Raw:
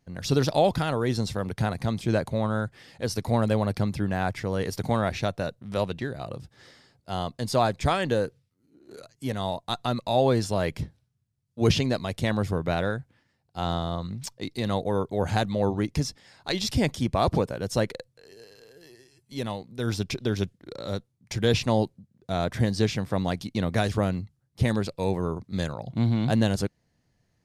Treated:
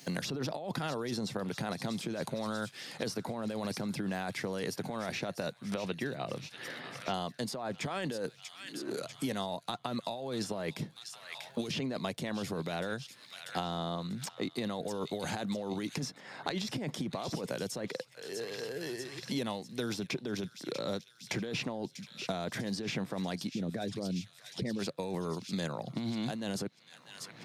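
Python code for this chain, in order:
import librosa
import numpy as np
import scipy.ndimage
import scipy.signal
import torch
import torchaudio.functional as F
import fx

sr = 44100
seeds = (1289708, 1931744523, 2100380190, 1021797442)

y = fx.envelope_sharpen(x, sr, power=2.0, at=(23.49, 24.79))
y = scipy.signal.sosfilt(scipy.signal.butter(4, 150.0, 'highpass', fs=sr, output='sos'), y)
y = fx.over_compress(y, sr, threshold_db=-30.0, ratio=-1.0)
y = fx.lowpass(y, sr, hz=3400.0, slope=24, at=(5.74, 7.14))
y = fx.echo_wet_highpass(y, sr, ms=641, feedback_pct=58, hz=2100.0, wet_db=-14)
y = fx.band_squash(y, sr, depth_pct=100)
y = y * librosa.db_to_amplitude(-6.0)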